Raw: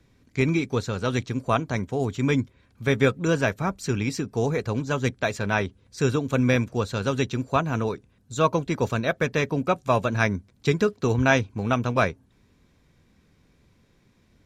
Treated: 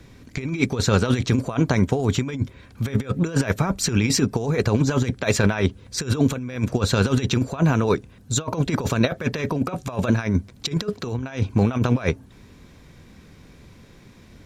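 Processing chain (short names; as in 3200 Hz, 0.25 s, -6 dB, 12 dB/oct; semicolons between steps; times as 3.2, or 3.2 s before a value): negative-ratio compressor -28 dBFS, ratio -0.5; gain +8 dB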